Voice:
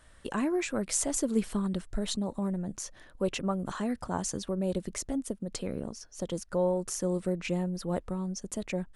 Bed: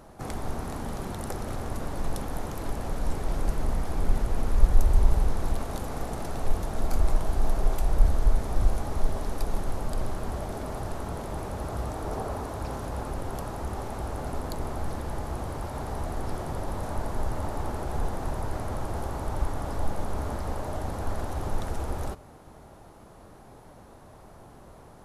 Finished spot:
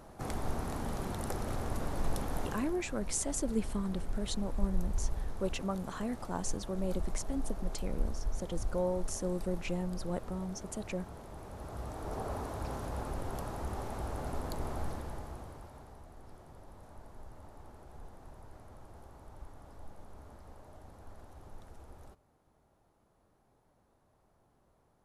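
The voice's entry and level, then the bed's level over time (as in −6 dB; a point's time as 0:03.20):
2.20 s, −5.0 dB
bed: 0:02.46 −3 dB
0:02.78 −13.5 dB
0:11.37 −13.5 dB
0:12.33 −5 dB
0:14.82 −5 dB
0:16.03 −21 dB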